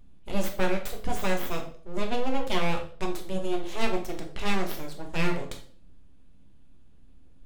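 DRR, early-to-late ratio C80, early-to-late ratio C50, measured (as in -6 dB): 2.0 dB, 14.0 dB, 9.0 dB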